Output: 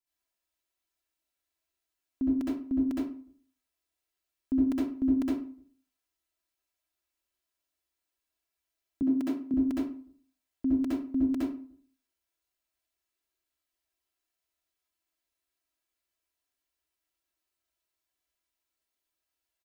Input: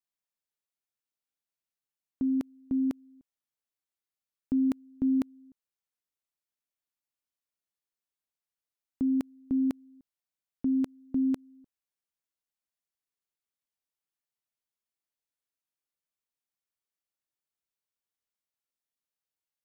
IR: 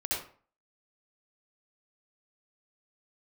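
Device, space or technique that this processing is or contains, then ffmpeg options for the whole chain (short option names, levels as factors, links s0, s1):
microphone above a desk: -filter_complex "[0:a]aecho=1:1:3:0.61[s0];[1:a]atrim=start_sample=2205[s1];[s0][s1]afir=irnorm=-1:irlink=0,asettb=1/sr,asplit=3[s2][s3][s4];[s2]atrim=end=9.024[s5];[s3]atrim=start=9.02:end=9.54,asetpts=PTS-STARTPTS,afade=t=in:d=0.004:c=qsin,afade=t=out:st=0.516:d=0.004:c=qsin,highpass=f=120:w=0.5412,highpass=f=120:w=1.3066[s6];[s4]atrim=start=9.536[s7];[s5][s6]acrossfade=d=0.004:c1=hsin:c2=qsin[s8];[s8][s7]acrossfade=d=0.004:c1=qsin:c2=hsin"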